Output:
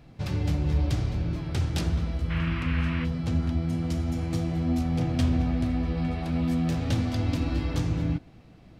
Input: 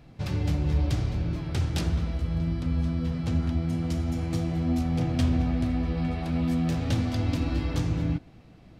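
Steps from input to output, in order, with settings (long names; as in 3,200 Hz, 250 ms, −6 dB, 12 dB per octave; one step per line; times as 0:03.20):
0:02.29–0:03.04: noise in a band 1,000–2,800 Hz −38 dBFS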